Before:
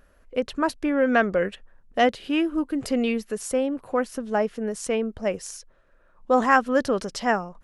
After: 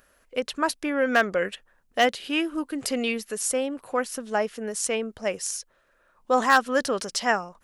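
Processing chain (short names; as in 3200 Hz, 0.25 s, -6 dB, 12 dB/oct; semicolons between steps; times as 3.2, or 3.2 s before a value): hard clip -9.5 dBFS, distortion -26 dB; tilt +2.5 dB/oct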